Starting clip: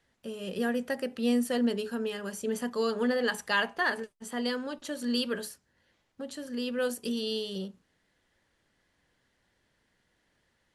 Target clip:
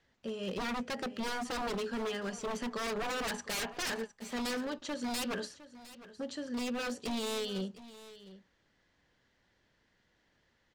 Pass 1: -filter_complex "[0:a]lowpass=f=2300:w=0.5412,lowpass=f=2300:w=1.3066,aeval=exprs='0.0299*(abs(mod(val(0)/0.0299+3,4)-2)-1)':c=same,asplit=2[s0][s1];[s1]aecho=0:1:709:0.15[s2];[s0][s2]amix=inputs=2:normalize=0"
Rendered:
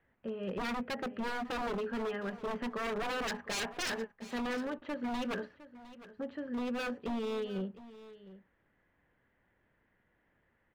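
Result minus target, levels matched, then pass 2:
8 kHz band -5.0 dB
-filter_complex "[0:a]lowpass=f=6800:w=0.5412,lowpass=f=6800:w=1.3066,aeval=exprs='0.0299*(abs(mod(val(0)/0.0299+3,4)-2)-1)':c=same,asplit=2[s0][s1];[s1]aecho=0:1:709:0.15[s2];[s0][s2]amix=inputs=2:normalize=0"

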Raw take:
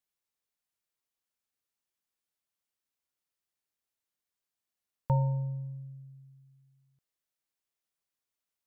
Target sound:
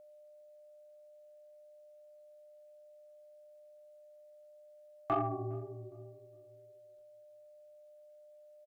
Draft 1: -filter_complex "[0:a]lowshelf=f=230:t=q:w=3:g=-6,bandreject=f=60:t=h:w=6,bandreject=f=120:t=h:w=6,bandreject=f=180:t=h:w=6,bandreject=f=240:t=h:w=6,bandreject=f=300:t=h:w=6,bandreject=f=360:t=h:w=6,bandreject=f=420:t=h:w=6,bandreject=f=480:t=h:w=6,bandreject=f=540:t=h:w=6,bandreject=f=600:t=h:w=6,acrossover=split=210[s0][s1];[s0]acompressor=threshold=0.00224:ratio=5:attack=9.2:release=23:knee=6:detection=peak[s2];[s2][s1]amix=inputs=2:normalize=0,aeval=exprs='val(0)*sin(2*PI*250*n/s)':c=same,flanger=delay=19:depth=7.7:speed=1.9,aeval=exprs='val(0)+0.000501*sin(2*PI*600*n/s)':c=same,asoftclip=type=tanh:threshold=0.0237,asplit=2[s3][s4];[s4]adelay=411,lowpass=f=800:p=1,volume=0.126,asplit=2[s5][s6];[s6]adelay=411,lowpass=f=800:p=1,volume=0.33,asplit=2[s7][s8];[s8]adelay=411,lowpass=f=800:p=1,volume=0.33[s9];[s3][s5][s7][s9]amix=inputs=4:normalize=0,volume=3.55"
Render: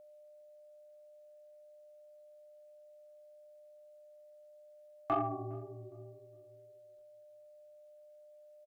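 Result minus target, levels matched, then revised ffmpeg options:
compression: peak gain reduction +5 dB
-filter_complex "[0:a]lowshelf=f=230:t=q:w=3:g=-6,bandreject=f=60:t=h:w=6,bandreject=f=120:t=h:w=6,bandreject=f=180:t=h:w=6,bandreject=f=240:t=h:w=6,bandreject=f=300:t=h:w=6,bandreject=f=360:t=h:w=6,bandreject=f=420:t=h:w=6,bandreject=f=480:t=h:w=6,bandreject=f=540:t=h:w=6,bandreject=f=600:t=h:w=6,acrossover=split=210[s0][s1];[s0]acompressor=threshold=0.00473:ratio=5:attack=9.2:release=23:knee=6:detection=peak[s2];[s2][s1]amix=inputs=2:normalize=0,aeval=exprs='val(0)*sin(2*PI*250*n/s)':c=same,flanger=delay=19:depth=7.7:speed=1.9,aeval=exprs='val(0)+0.000501*sin(2*PI*600*n/s)':c=same,asoftclip=type=tanh:threshold=0.0237,asplit=2[s3][s4];[s4]adelay=411,lowpass=f=800:p=1,volume=0.126,asplit=2[s5][s6];[s6]adelay=411,lowpass=f=800:p=1,volume=0.33,asplit=2[s7][s8];[s8]adelay=411,lowpass=f=800:p=1,volume=0.33[s9];[s3][s5][s7][s9]amix=inputs=4:normalize=0,volume=3.55"

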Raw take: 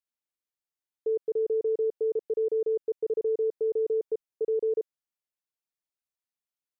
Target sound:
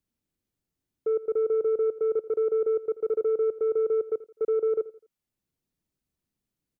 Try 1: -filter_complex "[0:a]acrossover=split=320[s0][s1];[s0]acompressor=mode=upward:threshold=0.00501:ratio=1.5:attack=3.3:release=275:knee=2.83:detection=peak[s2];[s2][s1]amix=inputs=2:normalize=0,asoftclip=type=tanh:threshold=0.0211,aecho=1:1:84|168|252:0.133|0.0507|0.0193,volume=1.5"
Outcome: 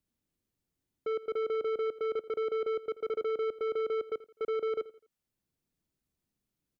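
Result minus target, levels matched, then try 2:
saturation: distortion +13 dB
-filter_complex "[0:a]acrossover=split=320[s0][s1];[s0]acompressor=mode=upward:threshold=0.00501:ratio=1.5:attack=3.3:release=275:knee=2.83:detection=peak[s2];[s2][s1]amix=inputs=2:normalize=0,asoftclip=type=tanh:threshold=0.075,aecho=1:1:84|168|252:0.133|0.0507|0.0193,volume=1.5"

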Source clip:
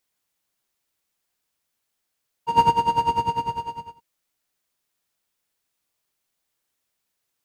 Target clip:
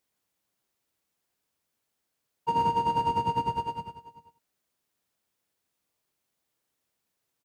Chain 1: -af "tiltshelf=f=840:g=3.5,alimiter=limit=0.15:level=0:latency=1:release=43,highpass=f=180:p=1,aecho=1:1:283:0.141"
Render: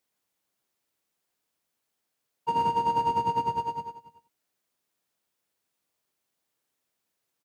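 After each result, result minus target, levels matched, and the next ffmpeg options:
echo 106 ms early; 125 Hz band -3.5 dB
-af "tiltshelf=f=840:g=3.5,alimiter=limit=0.15:level=0:latency=1:release=43,highpass=f=180:p=1,aecho=1:1:389:0.141"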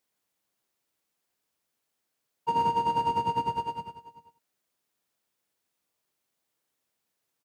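125 Hz band -3.0 dB
-af "tiltshelf=f=840:g=3.5,alimiter=limit=0.15:level=0:latency=1:release=43,highpass=f=74:p=1,aecho=1:1:389:0.141"

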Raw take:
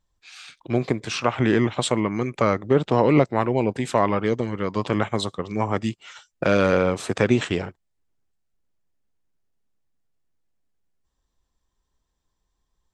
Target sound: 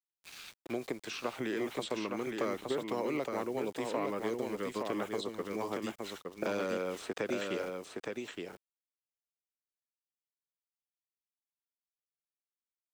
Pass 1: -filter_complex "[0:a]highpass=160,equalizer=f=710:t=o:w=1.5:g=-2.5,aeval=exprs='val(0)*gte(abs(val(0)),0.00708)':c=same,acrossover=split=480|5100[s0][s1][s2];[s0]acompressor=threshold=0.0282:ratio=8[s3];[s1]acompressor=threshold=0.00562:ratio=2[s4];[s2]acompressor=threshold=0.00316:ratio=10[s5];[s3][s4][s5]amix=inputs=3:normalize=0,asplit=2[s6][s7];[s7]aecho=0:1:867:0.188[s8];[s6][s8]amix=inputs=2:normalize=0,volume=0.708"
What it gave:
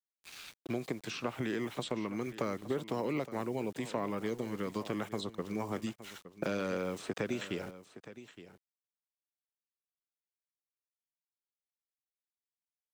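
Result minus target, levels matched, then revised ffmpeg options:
echo-to-direct -10.5 dB; 125 Hz band +7.0 dB
-filter_complex "[0:a]highpass=360,equalizer=f=710:t=o:w=1.5:g=-2.5,aeval=exprs='val(0)*gte(abs(val(0)),0.00708)':c=same,acrossover=split=480|5100[s0][s1][s2];[s0]acompressor=threshold=0.0282:ratio=8[s3];[s1]acompressor=threshold=0.00562:ratio=2[s4];[s2]acompressor=threshold=0.00316:ratio=10[s5];[s3][s4][s5]amix=inputs=3:normalize=0,asplit=2[s6][s7];[s7]aecho=0:1:867:0.631[s8];[s6][s8]amix=inputs=2:normalize=0,volume=0.708"

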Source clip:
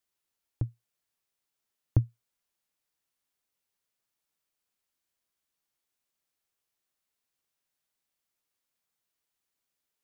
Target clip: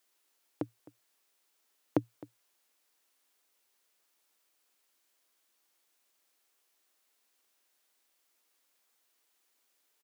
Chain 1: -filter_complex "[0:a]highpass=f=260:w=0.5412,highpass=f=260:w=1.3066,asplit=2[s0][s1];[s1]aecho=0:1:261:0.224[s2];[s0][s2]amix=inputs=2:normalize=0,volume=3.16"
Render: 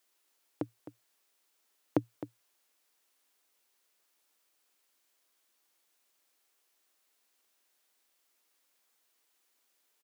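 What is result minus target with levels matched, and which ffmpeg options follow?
echo-to-direct +7 dB
-filter_complex "[0:a]highpass=f=260:w=0.5412,highpass=f=260:w=1.3066,asplit=2[s0][s1];[s1]aecho=0:1:261:0.1[s2];[s0][s2]amix=inputs=2:normalize=0,volume=3.16"

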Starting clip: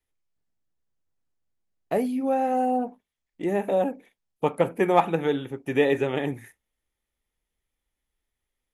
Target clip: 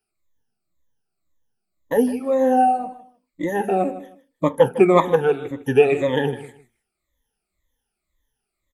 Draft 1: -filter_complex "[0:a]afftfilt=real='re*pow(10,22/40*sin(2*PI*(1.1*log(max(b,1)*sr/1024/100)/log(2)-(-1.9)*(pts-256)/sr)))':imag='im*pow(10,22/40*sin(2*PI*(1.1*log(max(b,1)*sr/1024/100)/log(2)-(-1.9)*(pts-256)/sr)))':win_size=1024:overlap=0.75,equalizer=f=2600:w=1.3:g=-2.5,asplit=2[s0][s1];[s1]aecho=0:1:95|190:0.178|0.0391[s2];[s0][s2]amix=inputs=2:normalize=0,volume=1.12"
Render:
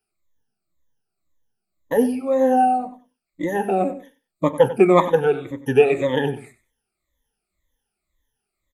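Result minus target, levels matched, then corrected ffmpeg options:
echo 61 ms early
-filter_complex "[0:a]afftfilt=real='re*pow(10,22/40*sin(2*PI*(1.1*log(max(b,1)*sr/1024/100)/log(2)-(-1.9)*(pts-256)/sr)))':imag='im*pow(10,22/40*sin(2*PI*(1.1*log(max(b,1)*sr/1024/100)/log(2)-(-1.9)*(pts-256)/sr)))':win_size=1024:overlap=0.75,equalizer=f=2600:w=1.3:g=-2.5,asplit=2[s0][s1];[s1]aecho=0:1:156|312:0.178|0.0391[s2];[s0][s2]amix=inputs=2:normalize=0,volume=1.12"

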